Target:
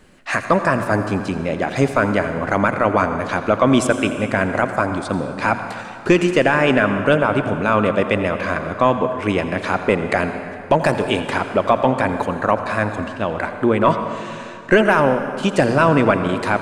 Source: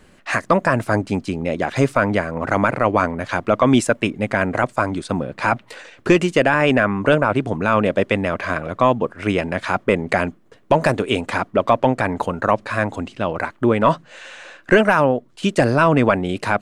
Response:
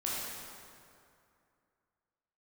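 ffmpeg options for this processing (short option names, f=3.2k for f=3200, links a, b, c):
-filter_complex "[0:a]bandreject=f=60:t=h:w=6,bandreject=f=120:t=h:w=6,asplit=2[a][b];[1:a]atrim=start_sample=2205,adelay=84[c];[b][c]afir=irnorm=-1:irlink=0,volume=-13dB[d];[a][d]amix=inputs=2:normalize=0"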